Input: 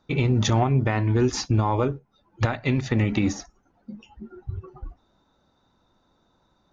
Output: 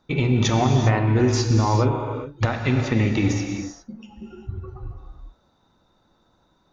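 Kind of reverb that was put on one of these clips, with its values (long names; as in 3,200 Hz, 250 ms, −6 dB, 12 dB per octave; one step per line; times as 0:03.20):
reverb whose tail is shaped and stops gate 430 ms flat, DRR 3 dB
level +1 dB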